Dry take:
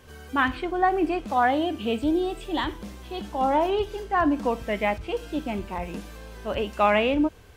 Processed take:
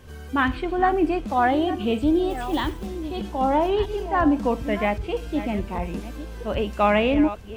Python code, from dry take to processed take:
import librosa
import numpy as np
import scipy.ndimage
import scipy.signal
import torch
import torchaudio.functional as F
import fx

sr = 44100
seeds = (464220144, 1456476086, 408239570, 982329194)

y = fx.reverse_delay(x, sr, ms=643, wet_db=-12.5)
y = fx.low_shelf(y, sr, hz=280.0, db=7.5)
y = fx.quant_companded(y, sr, bits=6, at=(2.3, 2.87))